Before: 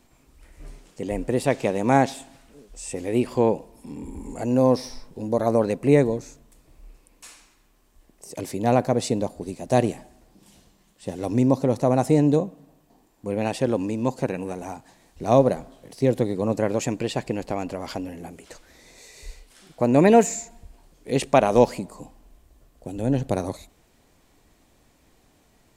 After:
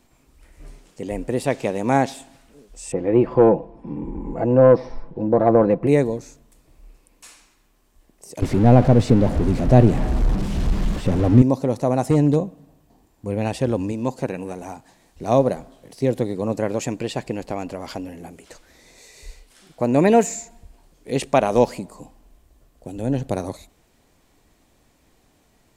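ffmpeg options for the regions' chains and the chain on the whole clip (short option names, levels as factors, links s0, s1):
-filter_complex "[0:a]asettb=1/sr,asplit=3[s0][s1][s2];[s0]atrim=end=2.924[s3];[s1]atrim=start=2.92:end=5.87,asetpts=PTS-STARTPTS,afade=t=in:d=0.004:c=qsin,afade=t=out:st=2.946:d=0.004:c=qsin,lowpass=1400,aecho=1:1:6:0.47,atrim=end_sample=130095,acontrast=66[s4];[s2]atrim=start=5.866[s5];[s3][s4]acrossfade=d=0.004:c1=hsin:c2=qsin[s6];[s6][s5]acrossfade=d=0.004:c1=qsin:c2=hsin,asettb=1/sr,asplit=3[s7][s8][s9];[s7]atrim=end=8.424[s10];[s8]atrim=start=8.42:end=11.42,asetpts=PTS-STARTPTS,afade=t=in:d=0.004:c=qsin,afade=t=out:st=2.996:d=0.004:c=qsin,aeval=exprs='val(0)+0.5*0.0562*sgn(val(0))':c=same,aemphasis=mode=reproduction:type=riaa[s11];[s9]atrim=start=11.416[s12];[s10][s11]acrossfade=d=0.004:c1=hsin:c2=qsin[s13];[s13][s12]acrossfade=d=0.004:c1=qsin:c2=hsin,asettb=1/sr,asplit=3[s14][s15][s16];[s14]atrim=end=12.104[s17];[s15]atrim=start=12.1:end=13.92,asetpts=PTS-STARTPTS,afade=t=in:d=0.004:c=qsin,afade=t=out:st=1.816:d=0.004:c=qsin,equalizer=f=67:t=o:w=1.4:g=14,asoftclip=type=hard:threshold=0.316[s18];[s16]atrim=start=13.916[s19];[s17][s18]acrossfade=d=0.004:c1=hsin:c2=qsin[s20];[s20][s19]acrossfade=d=0.004:c1=qsin:c2=hsin"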